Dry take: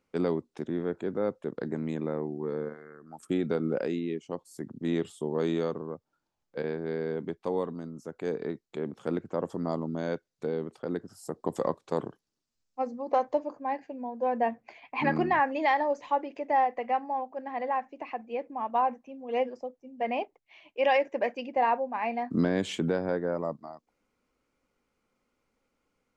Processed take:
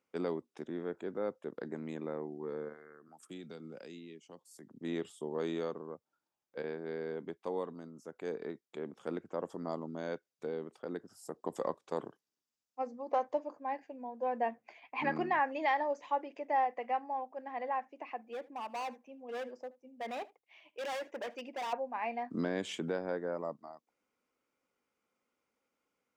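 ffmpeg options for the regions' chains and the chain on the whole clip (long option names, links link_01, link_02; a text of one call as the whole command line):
ffmpeg -i in.wav -filter_complex "[0:a]asettb=1/sr,asplit=3[link_01][link_02][link_03];[link_01]atrim=end=3.084[link_04];[link_02]atrim=start=3.08:end=4.72,asetpts=PTS-STARTPTS,afade=type=in:duration=0.004:curve=qsin,afade=type=out:start_time=1.636:duration=0.004:curve=qsin,lowshelf=frequency=120:gain=-10,acrossover=split=190|3000[link_05][link_06][link_07];[link_06]acompressor=threshold=-51dB:ratio=2:attack=3.2:release=140:knee=2.83:detection=peak[link_08];[link_05][link_08][link_07]amix=inputs=3:normalize=0[link_09];[link_03]atrim=start=4.716[link_10];[link_04][link_09]acrossfade=duration=0.004:curve1=hsin:curve2=qsin[link_11];[link_11][link_10]acrossfade=duration=0.004:curve1=qsin:curve2=hsin,asettb=1/sr,asplit=3[link_12][link_13][link_14];[link_12]atrim=end=18.184[link_15];[link_13]atrim=start=18.18:end=21.73,asetpts=PTS-STARTPTS,afade=type=in:duration=0.004:curve=qsin,afade=type=out:start_time=3.546:duration=0.004:curve=qsin,asoftclip=type=hard:threshold=-30.5dB,aecho=1:1:77:0.0841,atrim=end_sample=156555[link_16];[link_14]atrim=start=21.726[link_17];[link_15][link_16]acrossfade=duration=0.004:curve1=hsin:curve2=qsin[link_18];[link_18][link_17]acrossfade=duration=0.004:curve1=qsin:curve2=hsin,highpass=frequency=310:poles=1,bandreject=frequency=4200:width=14,volume=-5dB" out.wav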